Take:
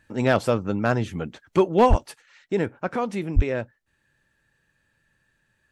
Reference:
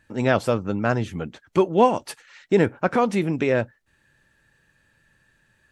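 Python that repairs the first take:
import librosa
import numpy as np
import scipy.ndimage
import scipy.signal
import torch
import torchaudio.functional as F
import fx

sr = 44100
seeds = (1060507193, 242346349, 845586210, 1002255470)

y = fx.fix_declip(x, sr, threshold_db=-8.5)
y = fx.fix_deplosive(y, sr, at_s=(1.89, 3.35))
y = fx.fix_level(y, sr, at_s=2.06, step_db=6.0)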